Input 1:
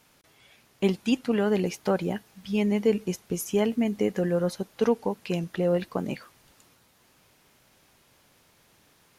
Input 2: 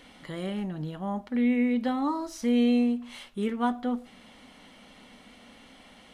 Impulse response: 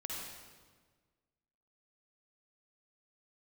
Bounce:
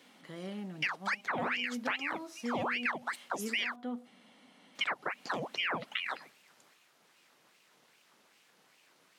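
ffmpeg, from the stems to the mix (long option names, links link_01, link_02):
-filter_complex "[0:a]highshelf=frequency=11000:gain=-11.5,aeval=exprs='val(0)*sin(2*PI*1500*n/s+1500*0.8/2.5*sin(2*PI*2.5*n/s))':channel_layout=same,volume=-0.5dB,asplit=3[link_01][link_02][link_03];[link_01]atrim=end=3.76,asetpts=PTS-STARTPTS,afade=type=out:start_time=3.756:duration=0.004:curve=hsin[link_04];[link_02]atrim=start=3.76:end=4.75,asetpts=PTS-STARTPTS,volume=0[link_05];[link_03]atrim=start=4.75,asetpts=PTS-STARTPTS,afade=type=in:duration=0.004:curve=hsin[link_06];[link_04][link_05][link_06]concat=n=3:v=0:a=1,asplit=2[link_07][link_08];[1:a]volume=-8.5dB[link_09];[link_08]apad=whole_len=270572[link_10];[link_09][link_10]sidechaincompress=threshold=-34dB:ratio=8:attack=16:release=105[link_11];[link_07][link_11]amix=inputs=2:normalize=0,highpass=frequency=150:width=0.5412,highpass=frequency=150:width=1.3066,acompressor=threshold=-32dB:ratio=3"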